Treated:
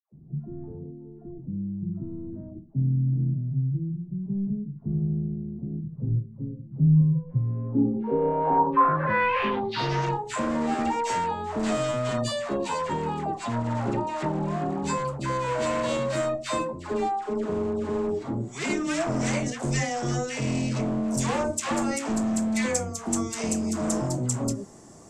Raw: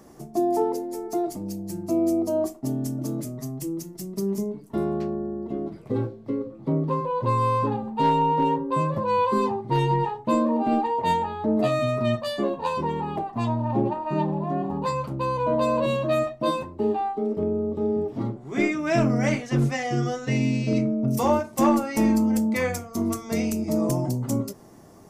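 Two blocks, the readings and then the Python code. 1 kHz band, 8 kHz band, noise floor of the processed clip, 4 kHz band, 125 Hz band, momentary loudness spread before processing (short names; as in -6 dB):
-2.5 dB, +6.0 dB, -44 dBFS, +1.5 dB, +1.5 dB, 8 LU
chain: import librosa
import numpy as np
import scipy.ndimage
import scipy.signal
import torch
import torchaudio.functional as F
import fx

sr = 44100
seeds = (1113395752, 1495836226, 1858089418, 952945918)

y = np.clip(10.0 ** (24.0 / 20.0) * x, -1.0, 1.0) / 10.0 ** (24.0 / 20.0)
y = fx.filter_sweep_lowpass(y, sr, from_hz=150.0, to_hz=7700.0, start_s=7.24, end_s=10.18, q=4.5)
y = fx.dispersion(y, sr, late='lows', ms=126.0, hz=940.0)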